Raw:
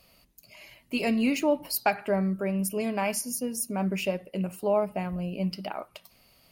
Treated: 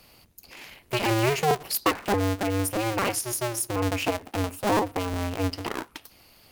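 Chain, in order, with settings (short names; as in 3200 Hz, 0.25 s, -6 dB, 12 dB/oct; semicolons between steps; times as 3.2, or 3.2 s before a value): cycle switcher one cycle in 2, inverted; in parallel at -1.5 dB: compressor, threshold -36 dBFS, peak gain reduction 16 dB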